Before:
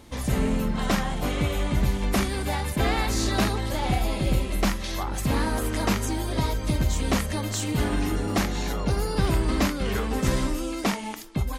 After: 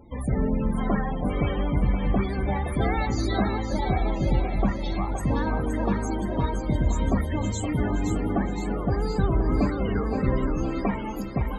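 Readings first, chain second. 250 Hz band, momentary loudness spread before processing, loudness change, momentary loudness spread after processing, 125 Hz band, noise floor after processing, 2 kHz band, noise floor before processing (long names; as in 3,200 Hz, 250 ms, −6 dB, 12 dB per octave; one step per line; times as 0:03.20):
+1.0 dB, 4 LU, 0.0 dB, 3 LU, +0.5 dB, −31 dBFS, −4.5 dB, −32 dBFS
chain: spectral peaks only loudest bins 32
echo with a time of its own for lows and highs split 330 Hz, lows 330 ms, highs 519 ms, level −6.5 dB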